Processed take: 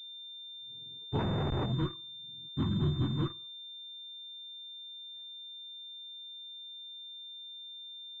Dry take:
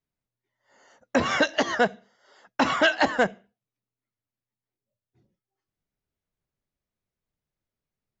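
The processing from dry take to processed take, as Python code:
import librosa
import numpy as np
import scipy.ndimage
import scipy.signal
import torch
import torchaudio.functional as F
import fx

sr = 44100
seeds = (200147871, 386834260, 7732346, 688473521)

p1 = fx.octave_mirror(x, sr, pivot_hz=480.0)
p2 = fx.quant_companded(p1, sr, bits=2)
p3 = p1 + (p2 * librosa.db_to_amplitude(-10.0))
p4 = fx.tube_stage(p3, sr, drive_db=19.0, bias=0.3)
p5 = fx.schmitt(p4, sr, flips_db=-44.0, at=(1.19, 1.66))
p6 = fx.spec_box(p5, sr, start_s=1.72, length_s=1.69, low_hz=370.0, high_hz=960.0, gain_db=-13)
p7 = fx.pwm(p6, sr, carrier_hz=3600.0)
y = p7 * librosa.db_to_amplitude(-5.5)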